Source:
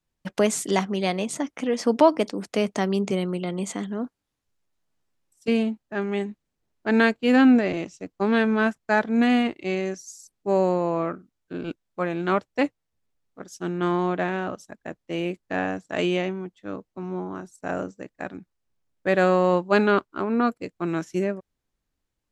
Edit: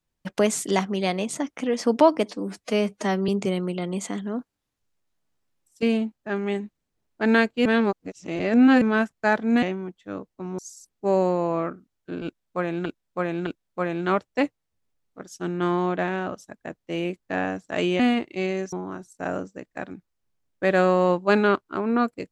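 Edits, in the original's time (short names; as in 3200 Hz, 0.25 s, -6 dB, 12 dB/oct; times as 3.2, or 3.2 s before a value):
2.25–2.94 stretch 1.5×
7.31–8.47 reverse
9.28–10.01 swap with 16.2–17.16
11.67–12.28 loop, 3 plays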